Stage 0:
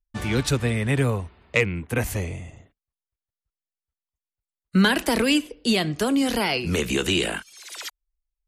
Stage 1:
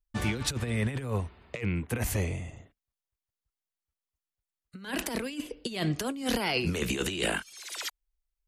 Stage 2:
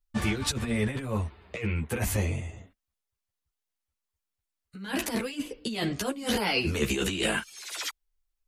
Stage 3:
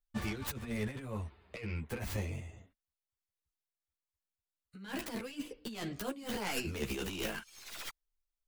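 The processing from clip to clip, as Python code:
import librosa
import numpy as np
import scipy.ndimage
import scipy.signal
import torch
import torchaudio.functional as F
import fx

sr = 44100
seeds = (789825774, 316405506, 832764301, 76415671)

y1 = fx.over_compress(x, sr, threshold_db=-25.0, ratio=-0.5)
y1 = y1 * 10.0 ** (-4.5 / 20.0)
y2 = fx.ensemble(y1, sr)
y2 = y2 * 10.0 ** (5.0 / 20.0)
y3 = fx.tracing_dist(y2, sr, depth_ms=0.3)
y3 = fx.am_noise(y3, sr, seeds[0], hz=5.7, depth_pct=50)
y3 = y3 * 10.0 ** (-7.0 / 20.0)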